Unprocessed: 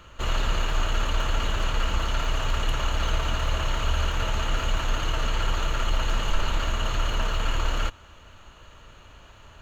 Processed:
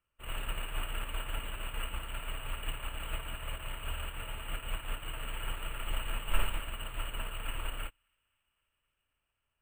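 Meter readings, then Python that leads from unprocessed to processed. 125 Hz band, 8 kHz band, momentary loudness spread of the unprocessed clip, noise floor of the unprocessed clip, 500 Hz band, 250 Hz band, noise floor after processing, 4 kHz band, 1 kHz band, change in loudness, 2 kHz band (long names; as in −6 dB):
−14.0 dB, can't be measured, 1 LU, −50 dBFS, −14.0 dB, −14.0 dB, −83 dBFS, −11.0 dB, −13.0 dB, −12.0 dB, −10.0 dB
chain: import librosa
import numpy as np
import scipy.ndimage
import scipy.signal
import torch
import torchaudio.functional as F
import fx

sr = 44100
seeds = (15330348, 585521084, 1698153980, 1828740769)

p1 = fx.high_shelf_res(x, sr, hz=3700.0, db=-11.5, q=3.0)
p2 = p1 + fx.echo_wet_highpass(p1, sr, ms=263, feedback_pct=79, hz=1700.0, wet_db=-13.0, dry=0)
p3 = fx.room_shoebox(p2, sr, seeds[0], volume_m3=1900.0, walls='furnished', distance_m=0.3)
p4 = np.repeat(scipy.signal.resample_poly(p3, 1, 4), 4)[:len(p3)]
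p5 = fx.upward_expand(p4, sr, threshold_db=-37.0, expansion=2.5)
y = F.gain(torch.from_numpy(p5), -5.0).numpy()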